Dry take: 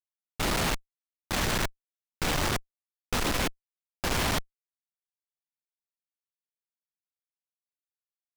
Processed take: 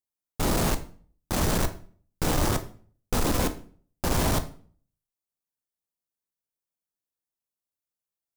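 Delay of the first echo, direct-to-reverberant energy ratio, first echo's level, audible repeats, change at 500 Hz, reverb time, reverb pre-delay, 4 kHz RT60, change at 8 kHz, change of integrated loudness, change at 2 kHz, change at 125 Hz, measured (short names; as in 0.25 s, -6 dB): none, 8.0 dB, none, none, +4.0 dB, 0.45 s, 12 ms, 0.35 s, +2.0 dB, +2.0 dB, -3.5 dB, +5.5 dB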